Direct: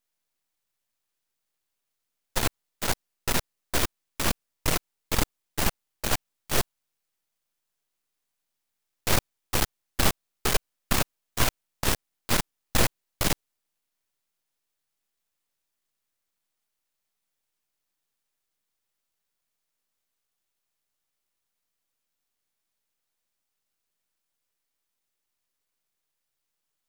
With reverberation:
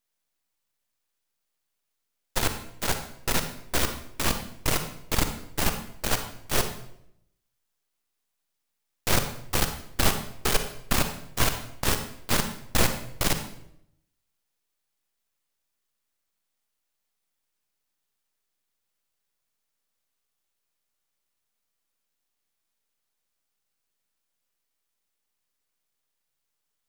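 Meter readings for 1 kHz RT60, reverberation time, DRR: 0.65 s, 0.75 s, 7.0 dB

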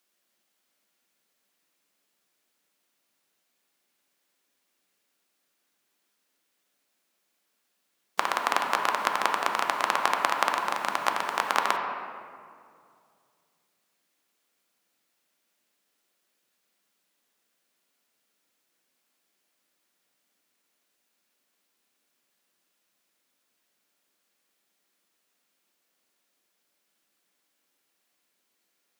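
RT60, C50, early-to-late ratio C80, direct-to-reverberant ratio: 2.3 s, 4.0 dB, 5.0 dB, 2.0 dB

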